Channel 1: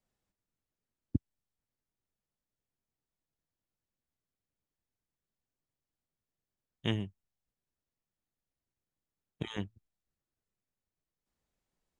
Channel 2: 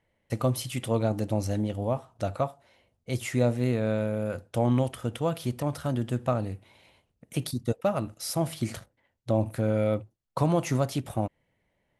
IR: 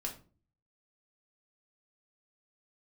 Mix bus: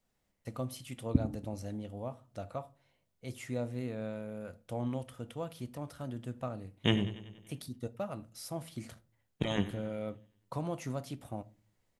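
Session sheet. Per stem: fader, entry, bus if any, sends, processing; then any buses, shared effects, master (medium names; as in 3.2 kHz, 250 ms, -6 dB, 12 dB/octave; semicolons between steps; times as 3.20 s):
+2.5 dB, 0.00 s, send -7.5 dB, echo send -12 dB, none
-13.5 dB, 0.15 s, send -11 dB, no echo send, none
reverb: on, RT60 0.40 s, pre-delay 4 ms
echo: feedback delay 95 ms, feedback 59%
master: none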